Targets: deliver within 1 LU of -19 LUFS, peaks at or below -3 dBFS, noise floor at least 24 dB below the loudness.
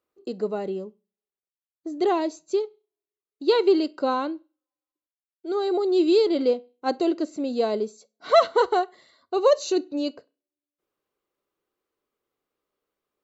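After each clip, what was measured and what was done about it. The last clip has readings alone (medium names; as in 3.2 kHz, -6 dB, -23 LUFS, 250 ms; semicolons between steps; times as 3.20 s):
loudness -24.0 LUFS; peak level -6.5 dBFS; loudness target -19.0 LUFS
-> trim +5 dB; peak limiter -3 dBFS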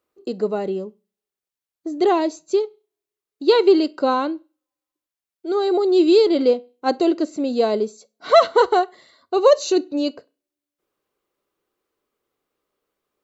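loudness -19.0 LUFS; peak level -3.0 dBFS; noise floor -90 dBFS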